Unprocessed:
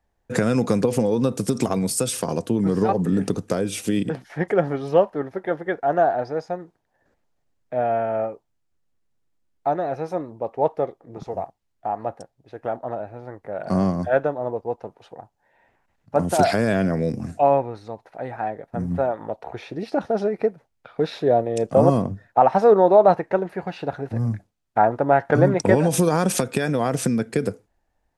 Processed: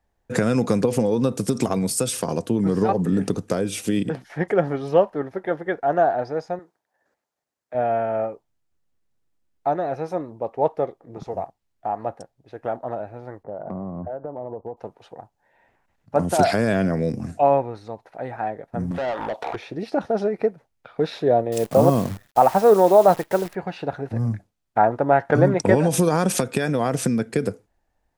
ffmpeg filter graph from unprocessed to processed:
ffmpeg -i in.wav -filter_complex "[0:a]asettb=1/sr,asplit=3[link_01][link_02][link_03];[link_01]atrim=end=6.594[link_04];[link_02]atrim=start=6.59:end=7.75,asetpts=PTS-STARTPTS,afade=type=in:duration=0.004:curve=qsin,afade=type=out:start_time=1.156:duration=0.004:curve=qsin,highpass=frequency=730:poles=1,equalizer=frequency=2900:width_type=o:width=1.1:gain=-4[link_05];[link_03]atrim=start=7.746[link_06];[link_04][link_05]acrossfade=duration=0.004:curve1=hsin:curve2=qsin[link_07];[link_07][link_06]acrossfade=duration=0.004:curve1=qsin:curve2=hsin,asettb=1/sr,asplit=3[link_08][link_09][link_10];[link_08]atrim=end=13.434[link_11];[link_09]atrim=start=13.43:end=14.77,asetpts=PTS-STARTPTS,afade=type=in:duration=0.004:curve=qsin,afade=type=out:start_time=1.336:duration=0.004:curve=qsin,lowpass=frequency=1100:width=0.5412,lowpass=frequency=1100:width=1.3066,acompressor=threshold=-27dB:ratio=12:attack=3.2:release=140:knee=1:detection=peak[link_12];[link_10]atrim=start=14.766[link_13];[link_11][link_12]acrossfade=duration=0.004:curve1=hsin:curve2=qsin[link_14];[link_14][link_13]acrossfade=duration=0.004:curve1=qsin:curve2=hsin,asettb=1/sr,asplit=3[link_15][link_16][link_17];[link_15]atrim=end=18.914[link_18];[link_16]atrim=start=18.91:end=19.56,asetpts=PTS-STARTPTS,afade=type=in:duration=0.004:curve=qsin,afade=type=out:start_time=0.646:duration=0.004:curve=qsin,acompressor=threshold=-27dB:ratio=6:attack=3.2:release=140:knee=1:detection=peak,equalizer=frequency=3400:width=4.4:gain=6,asplit=2[link_19][link_20];[link_20]highpass=frequency=720:poles=1,volume=22dB,asoftclip=type=tanh:threshold=-18dB[link_21];[link_19][link_21]amix=inputs=2:normalize=0,lowpass=frequency=7500:poles=1,volume=-6dB[link_22];[link_17]atrim=start=19.556[link_23];[link_18][link_22]acrossfade=duration=0.004:curve1=hsin:curve2=qsin[link_24];[link_24][link_23]acrossfade=duration=0.004:curve1=qsin:curve2=hsin,asettb=1/sr,asplit=3[link_25][link_26][link_27];[link_25]atrim=end=21.524[link_28];[link_26]atrim=start=21.52:end=23.55,asetpts=PTS-STARTPTS,afade=type=in:duration=0.004:curve=qsin,afade=type=out:start_time=2.026:duration=0.004:curve=qsin,acrusher=bits=7:dc=4:mix=0:aa=0.000001,highshelf=frequency=7700:gain=6[link_29];[link_27]atrim=start=23.546[link_30];[link_28][link_29]acrossfade=duration=0.004:curve1=hsin:curve2=qsin[link_31];[link_31][link_30]acrossfade=duration=0.004:curve1=qsin:curve2=hsin" out.wav

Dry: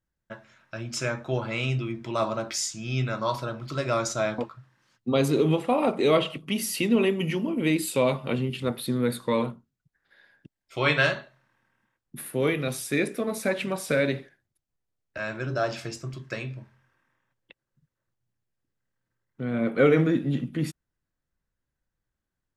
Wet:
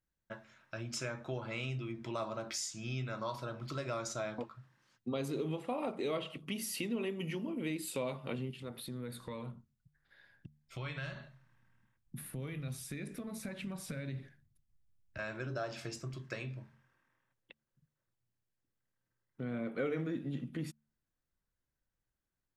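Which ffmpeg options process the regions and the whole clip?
ffmpeg -i in.wav -filter_complex "[0:a]asettb=1/sr,asplit=3[link_01][link_02][link_03];[link_01]atrim=end=8.514[link_04];[link_02]atrim=start=8.51:end=15.19,asetpts=PTS-STARTPTS,afade=type=in:duration=0.004:curve=qsin,afade=type=out:start_time=6.676:duration=0.004:curve=qsin,acompressor=threshold=-42dB:ratio=2:attack=3.2:release=140:knee=1:detection=peak,asubboost=boost=7.5:cutoff=160[link_05];[link_03]atrim=start=15.186[link_06];[link_04][link_05]acrossfade=duration=0.004:curve1=hsin:curve2=qsin[link_07];[link_07][link_06]acrossfade=duration=0.004:curve1=qsin:curve2=hsin,acompressor=threshold=-33dB:ratio=2.5,bandreject=frequency=74.02:width_type=h:width=4,bandreject=frequency=148.04:width_type=h:width=4,bandreject=frequency=222.06:width_type=h:width=4,volume=-5dB" out.wav

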